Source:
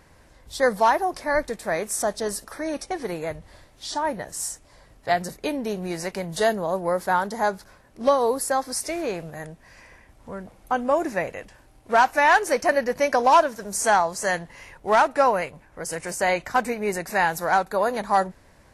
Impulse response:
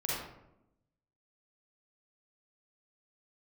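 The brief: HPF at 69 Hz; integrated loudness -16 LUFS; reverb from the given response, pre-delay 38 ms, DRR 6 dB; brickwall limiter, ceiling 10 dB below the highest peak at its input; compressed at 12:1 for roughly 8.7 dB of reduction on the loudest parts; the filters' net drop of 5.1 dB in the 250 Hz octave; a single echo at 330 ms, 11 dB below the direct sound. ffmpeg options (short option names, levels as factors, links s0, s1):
-filter_complex "[0:a]highpass=69,equalizer=f=250:t=o:g=-7,acompressor=threshold=0.0891:ratio=12,alimiter=limit=0.0891:level=0:latency=1,aecho=1:1:330:0.282,asplit=2[s0][s1];[1:a]atrim=start_sample=2205,adelay=38[s2];[s1][s2]afir=irnorm=-1:irlink=0,volume=0.266[s3];[s0][s3]amix=inputs=2:normalize=0,volume=5.31"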